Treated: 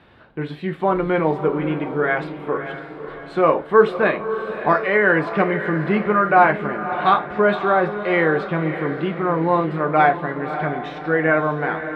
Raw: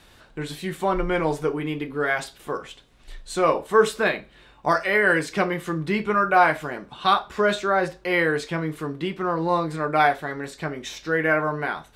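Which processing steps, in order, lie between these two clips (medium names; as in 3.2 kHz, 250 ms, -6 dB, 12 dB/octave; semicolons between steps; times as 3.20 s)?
high-pass 87 Hz 12 dB/octave; distance through air 450 m; on a send: echo that smears into a reverb 590 ms, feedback 47%, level -10 dB; on the sum: trim +5.5 dB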